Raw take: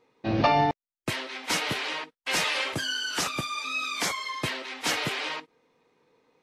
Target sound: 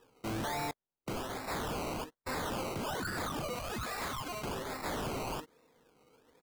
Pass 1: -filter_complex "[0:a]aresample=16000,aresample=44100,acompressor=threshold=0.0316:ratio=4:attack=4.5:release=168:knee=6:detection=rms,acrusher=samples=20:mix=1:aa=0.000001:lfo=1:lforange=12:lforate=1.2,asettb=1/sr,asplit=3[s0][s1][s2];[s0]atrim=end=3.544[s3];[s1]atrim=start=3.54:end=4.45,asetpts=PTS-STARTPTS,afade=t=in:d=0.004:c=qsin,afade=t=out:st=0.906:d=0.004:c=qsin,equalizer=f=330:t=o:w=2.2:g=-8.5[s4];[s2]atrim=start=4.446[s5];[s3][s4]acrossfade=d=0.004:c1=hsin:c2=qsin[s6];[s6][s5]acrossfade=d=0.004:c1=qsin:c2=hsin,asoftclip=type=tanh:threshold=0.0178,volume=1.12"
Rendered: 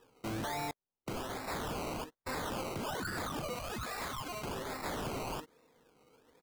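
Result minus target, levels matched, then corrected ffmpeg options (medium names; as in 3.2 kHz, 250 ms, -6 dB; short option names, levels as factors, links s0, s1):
compression: peak gain reduction +6.5 dB
-filter_complex "[0:a]aresample=16000,aresample=44100,acompressor=threshold=0.0841:ratio=4:attack=4.5:release=168:knee=6:detection=rms,acrusher=samples=20:mix=1:aa=0.000001:lfo=1:lforange=12:lforate=1.2,asettb=1/sr,asplit=3[s0][s1][s2];[s0]atrim=end=3.544[s3];[s1]atrim=start=3.54:end=4.45,asetpts=PTS-STARTPTS,afade=t=in:d=0.004:c=qsin,afade=t=out:st=0.906:d=0.004:c=qsin,equalizer=f=330:t=o:w=2.2:g=-8.5[s4];[s2]atrim=start=4.446[s5];[s3][s4]acrossfade=d=0.004:c1=hsin:c2=qsin[s6];[s6][s5]acrossfade=d=0.004:c1=qsin:c2=hsin,asoftclip=type=tanh:threshold=0.0178,volume=1.12"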